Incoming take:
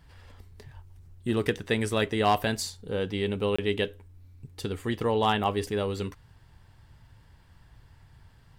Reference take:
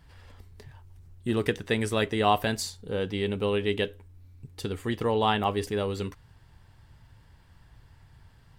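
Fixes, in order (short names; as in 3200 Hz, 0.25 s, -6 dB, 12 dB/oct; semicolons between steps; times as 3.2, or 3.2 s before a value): clip repair -14 dBFS; 0.75–0.87 HPF 140 Hz 24 dB/oct; interpolate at 3.56, 25 ms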